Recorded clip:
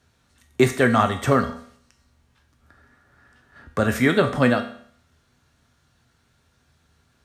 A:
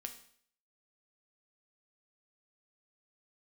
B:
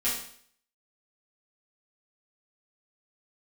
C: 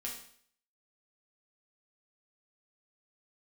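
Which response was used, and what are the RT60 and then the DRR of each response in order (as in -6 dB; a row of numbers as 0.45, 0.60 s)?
A; 0.60, 0.55, 0.55 s; 5.0, -11.0, -3.5 dB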